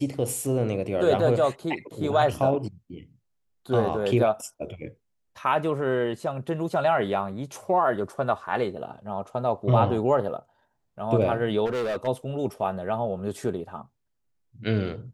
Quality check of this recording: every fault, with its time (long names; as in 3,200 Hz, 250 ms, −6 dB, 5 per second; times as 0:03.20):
0:11.65–0:12.08: clipping −24.5 dBFS